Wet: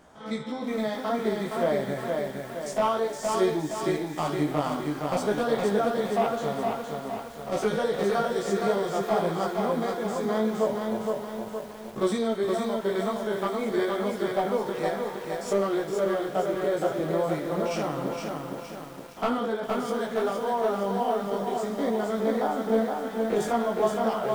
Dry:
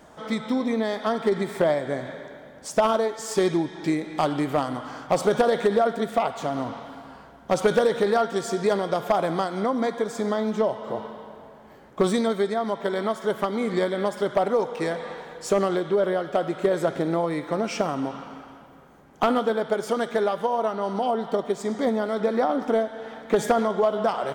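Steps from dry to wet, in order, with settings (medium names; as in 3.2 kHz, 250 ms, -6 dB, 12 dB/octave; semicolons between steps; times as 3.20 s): spectrogram pixelated in time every 50 ms; chorus voices 2, 0.54 Hz, delay 17 ms, depth 3.6 ms; bit-crushed delay 466 ms, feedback 55%, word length 8-bit, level -3.5 dB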